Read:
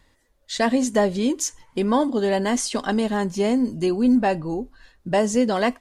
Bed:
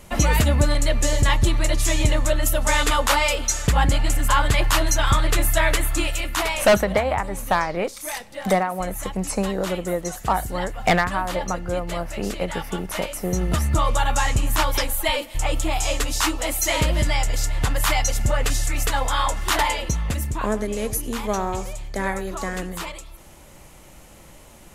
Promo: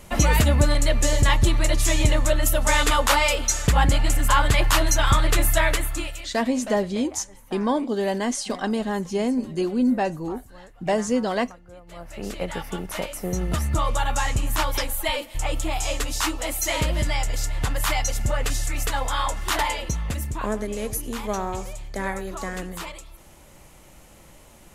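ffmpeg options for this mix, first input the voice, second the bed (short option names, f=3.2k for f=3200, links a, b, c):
-filter_complex "[0:a]adelay=5750,volume=-3dB[a];[1:a]volume=17dB,afade=t=out:st=5.52:d=0.85:silence=0.1,afade=t=in:st=11.85:d=0.57:silence=0.141254[b];[a][b]amix=inputs=2:normalize=0"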